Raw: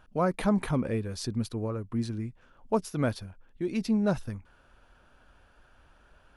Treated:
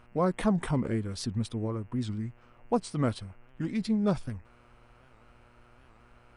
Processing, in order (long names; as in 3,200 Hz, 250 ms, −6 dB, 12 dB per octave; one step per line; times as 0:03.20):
hum with harmonics 120 Hz, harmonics 27, −62 dBFS −4 dB per octave
formants moved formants −2 semitones
wow of a warped record 78 rpm, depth 160 cents